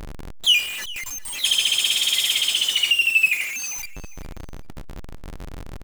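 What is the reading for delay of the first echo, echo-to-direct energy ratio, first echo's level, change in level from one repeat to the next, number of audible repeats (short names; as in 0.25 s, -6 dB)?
0.4 s, -19.0 dB, -19.0 dB, -14.0 dB, 2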